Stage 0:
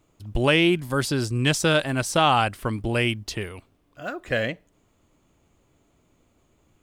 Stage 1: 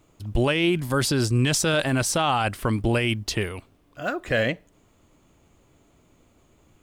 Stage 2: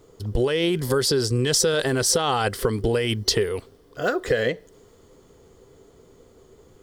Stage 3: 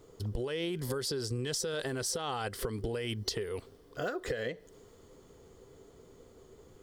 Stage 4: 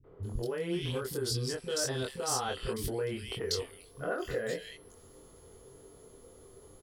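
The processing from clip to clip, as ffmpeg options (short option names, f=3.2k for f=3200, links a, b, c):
-af "alimiter=limit=-17.5dB:level=0:latency=1:release=19,volume=4.5dB"
-af "superequalizer=7b=3.98:12b=0.447:14b=1.58,acompressor=threshold=-23dB:ratio=6,adynamicequalizer=threshold=0.01:dfrequency=1500:dqfactor=0.7:tfrequency=1500:tqfactor=0.7:attack=5:release=100:ratio=0.375:range=2:mode=boostabove:tftype=highshelf,volume=4dB"
-af "acompressor=threshold=-28dB:ratio=6,volume=-4dB"
-filter_complex "[0:a]aeval=exprs='val(0)+0.000501*sin(2*PI*11000*n/s)':c=same,asplit=2[a][b];[b]adelay=23,volume=-3dB[c];[a][c]amix=inputs=2:normalize=0,acrossover=split=220|2300[d][e][f];[e]adelay=40[g];[f]adelay=230[h];[d][g][h]amix=inputs=3:normalize=0"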